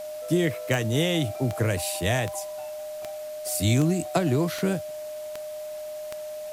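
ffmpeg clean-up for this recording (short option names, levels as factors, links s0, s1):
-af "adeclick=t=4,bandreject=f=610:w=30,afwtdn=0.004"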